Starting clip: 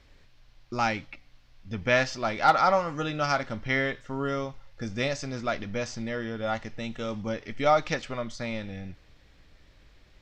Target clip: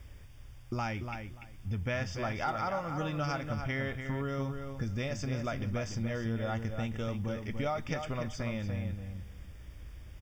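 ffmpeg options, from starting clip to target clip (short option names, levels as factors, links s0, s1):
-filter_complex "[0:a]equalizer=f=75:w=0.76:g=14.5,acompressor=threshold=0.0224:ratio=4,acrusher=bits=10:mix=0:aa=0.000001,asuperstop=centerf=4100:order=8:qfactor=5,asplit=2[s0][s1];[s1]adelay=291,lowpass=f=3700:p=1,volume=0.473,asplit=2[s2][s3];[s3]adelay=291,lowpass=f=3700:p=1,volume=0.18,asplit=2[s4][s5];[s5]adelay=291,lowpass=f=3700:p=1,volume=0.18[s6];[s0][s2][s4][s6]amix=inputs=4:normalize=0"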